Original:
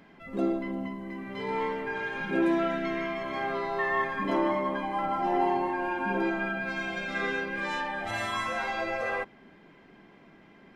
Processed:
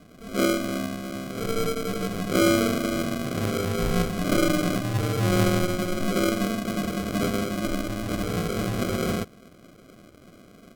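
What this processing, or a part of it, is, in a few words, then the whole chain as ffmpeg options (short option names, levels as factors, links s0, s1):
crushed at another speed: -af "asetrate=55125,aresample=44100,acrusher=samples=39:mix=1:aa=0.000001,asetrate=35280,aresample=44100,volume=1.78"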